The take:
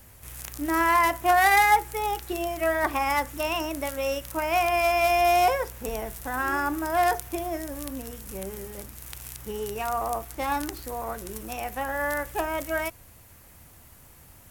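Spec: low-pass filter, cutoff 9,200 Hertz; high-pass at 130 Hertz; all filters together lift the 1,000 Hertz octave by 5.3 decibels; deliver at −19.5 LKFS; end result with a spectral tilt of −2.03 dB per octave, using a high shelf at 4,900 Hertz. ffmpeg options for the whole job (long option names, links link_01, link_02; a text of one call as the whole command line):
ffmpeg -i in.wav -af "highpass=130,lowpass=9200,equalizer=frequency=1000:width_type=o:gain=7,highshelf=frequency=4900:gain=8,volume=2dB" out.wav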